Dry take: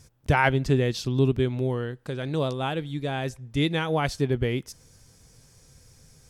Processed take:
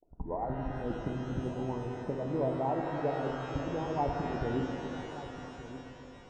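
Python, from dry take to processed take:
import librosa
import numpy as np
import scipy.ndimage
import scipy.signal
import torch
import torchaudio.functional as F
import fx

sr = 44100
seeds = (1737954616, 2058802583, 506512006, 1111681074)

p1 = fx.tape_start_head(x, sr, length_s=0.49)
p2 = scipy.signal.sosfilt(scipy.signal.cheby1(6, 3, 1000.0, 'lowpass', fs=sr, output='sos'), p1)
p3 = fx.over_compress(p2, sr, threshold_db=-27.0, ratio=-0.5)
p4 = fx.hpss(p3, sr, part='harmonic', gain_db=-13)
p5 = p4 + fx.echo_single(p4, sr, ms=1175, db=-14.5, dry=0)
y = fx.rev_shimmer(p5, sr, seeds[0], rt60_s=3.6, semitones=12, shimmer_db=-8, drr_db=1.5)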